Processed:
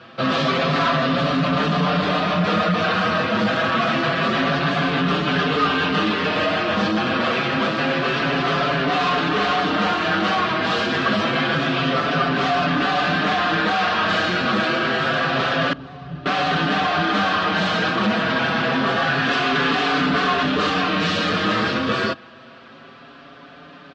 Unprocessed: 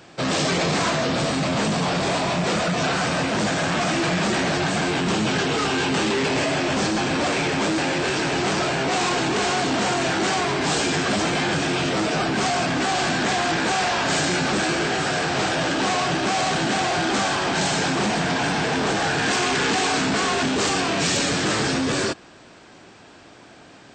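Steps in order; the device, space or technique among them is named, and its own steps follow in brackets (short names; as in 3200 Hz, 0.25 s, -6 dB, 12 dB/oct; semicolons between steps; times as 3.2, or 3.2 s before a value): barber-pole flanger into a guitar amplifier (endless flanger 5.7 ms +0.27 Hz; soft clip -19 dBFS, distortion -19 dB; speaker cabinet 100–3800 Hz, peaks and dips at 120 Hz -5 dB, 360 Hz -8 dB, 860 Hz -8 dB, 1200 Hz +6 dB, 2200 Hz -5 dB); 15.73–16.26 EQ curve 120 Hz 0 dB, 230 Hz -14 dB, 2500 Hz -24 dB; gain +8.5 dB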